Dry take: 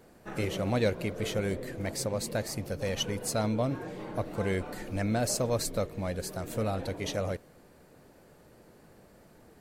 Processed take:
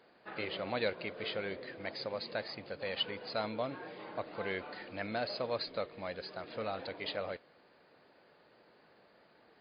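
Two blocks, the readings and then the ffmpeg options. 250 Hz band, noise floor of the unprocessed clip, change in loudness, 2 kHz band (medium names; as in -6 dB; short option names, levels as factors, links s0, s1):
-11.5 dB, -58 dBFS, -6.5 dB, -1.5 dB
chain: -af "highpass=f=850:p=1" -ar 11025 -c:a libmp3lame -b:a 40k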